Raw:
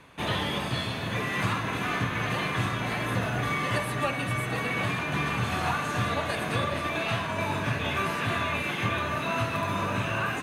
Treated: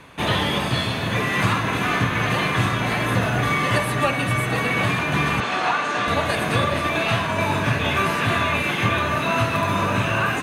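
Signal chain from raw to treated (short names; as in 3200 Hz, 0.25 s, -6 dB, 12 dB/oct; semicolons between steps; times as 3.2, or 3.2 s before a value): 5.4–6.08 BPF 310–5800 Hz; gain +7.5 dB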